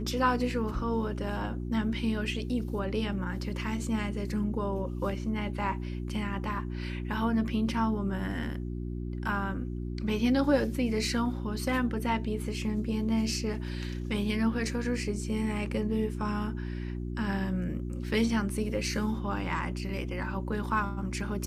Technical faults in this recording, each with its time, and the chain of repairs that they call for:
hum 60 Hz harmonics 6 -35 dBFS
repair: de-hum 60 Hz, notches 6

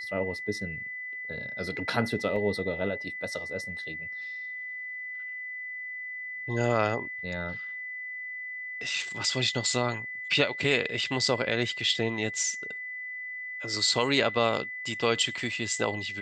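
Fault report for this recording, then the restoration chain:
whine 2 kHz -35 dBFS
2.36 s: dropout 4.5 ms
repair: band-stop 2 kHz, Q 30; interpolate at 2.36 s, 4.5 ms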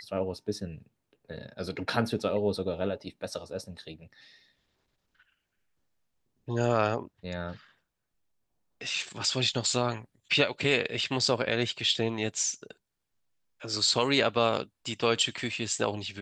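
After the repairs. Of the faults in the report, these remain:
nothing left

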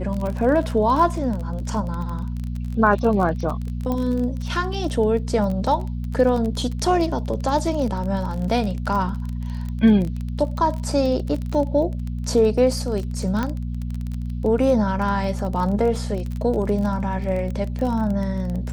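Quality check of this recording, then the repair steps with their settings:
crackle 24 per s -26 dBFS
hum 60 Hz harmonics 4 -27 dBFS
3.92 s: pop -14 dBFS
13.43 s: pop -12 dBFS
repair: de-click; de-hum 60 Hz, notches 4

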